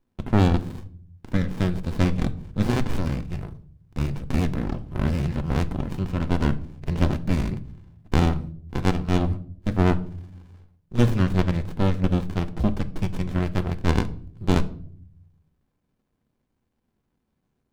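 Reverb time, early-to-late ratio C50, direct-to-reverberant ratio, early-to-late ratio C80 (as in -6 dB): 0.55 s, 18.0 dB, 10.5 dB, 21.5 dB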